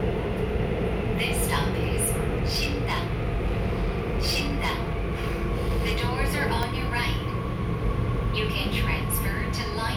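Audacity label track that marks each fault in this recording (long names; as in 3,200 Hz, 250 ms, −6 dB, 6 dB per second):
2.360000	6.030000	clipping −20.5 dBFS
6.630000	6.630000	click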